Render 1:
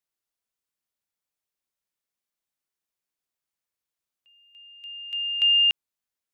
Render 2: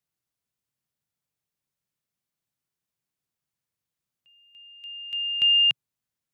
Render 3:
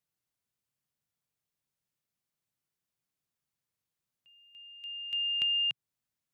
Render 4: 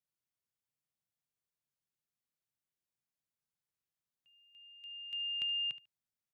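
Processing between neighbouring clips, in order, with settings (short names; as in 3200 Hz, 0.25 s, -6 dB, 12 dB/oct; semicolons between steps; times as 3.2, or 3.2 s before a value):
bell 130 Hz +15 dB 1.4 oct
compressor, threshold -26 dBFS, peak gain reduction 8 dB; gain -2 dB
feedback echo 73 ms, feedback 18%, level -15 dB; gain -7.5 dB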